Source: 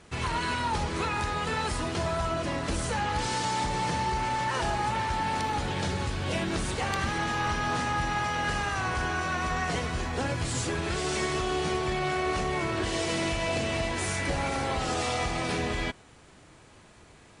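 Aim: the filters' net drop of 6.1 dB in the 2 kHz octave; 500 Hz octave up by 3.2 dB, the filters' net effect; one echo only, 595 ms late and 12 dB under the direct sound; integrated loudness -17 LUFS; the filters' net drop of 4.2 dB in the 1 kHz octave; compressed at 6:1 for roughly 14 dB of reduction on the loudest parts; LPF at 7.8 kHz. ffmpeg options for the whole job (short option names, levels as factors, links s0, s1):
-af "lowpass=7800,equalizer=f=500:t=o:g=6.5,equalizer=f=1000:t=o:g=-6.5,equalizer=f=2000:t=o:g=-6,acompressor=threshold=0.01:ratio=6,aecho=1:1:595:0.251,volume=18.8"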